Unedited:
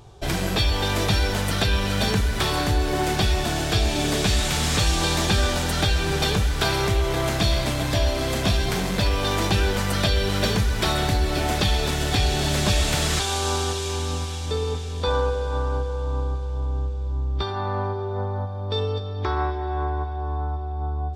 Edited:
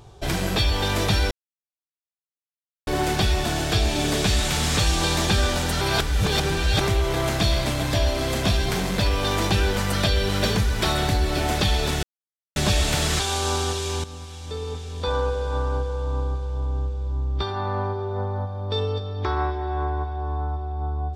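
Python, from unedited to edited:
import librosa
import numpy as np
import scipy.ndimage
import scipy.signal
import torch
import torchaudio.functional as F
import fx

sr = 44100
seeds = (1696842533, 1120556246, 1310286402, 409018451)

y = fx.edit(x, sr, fx.silence(start_s=1.31, length_s=1.56),
    fx.reverse_span(start_s=5.81, length_s=1.0),
    fx.silence(start_s=12.03, length_s=0.53),
    fx.fade_in_from(start_s=14.04, length_s=1.46, floor_db=-12.5), tone=tone)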